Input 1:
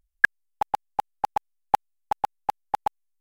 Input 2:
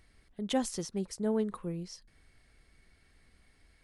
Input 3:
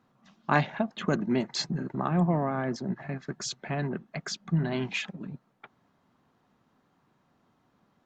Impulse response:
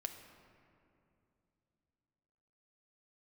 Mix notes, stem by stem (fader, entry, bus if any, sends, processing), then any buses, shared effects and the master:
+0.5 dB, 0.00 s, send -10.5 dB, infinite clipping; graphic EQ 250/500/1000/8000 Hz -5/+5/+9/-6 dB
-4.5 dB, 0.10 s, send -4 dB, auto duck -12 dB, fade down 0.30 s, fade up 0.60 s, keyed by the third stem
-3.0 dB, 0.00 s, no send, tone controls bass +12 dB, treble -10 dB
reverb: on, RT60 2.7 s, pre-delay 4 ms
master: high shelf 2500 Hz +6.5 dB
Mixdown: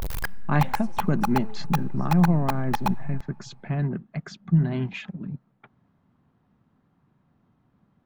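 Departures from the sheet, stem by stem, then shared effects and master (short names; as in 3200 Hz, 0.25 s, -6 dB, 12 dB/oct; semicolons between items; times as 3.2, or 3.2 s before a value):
stem 2 -4.5 dB -> -13.0 dB; master: missing high shelf 2500 Hz +6.5 dB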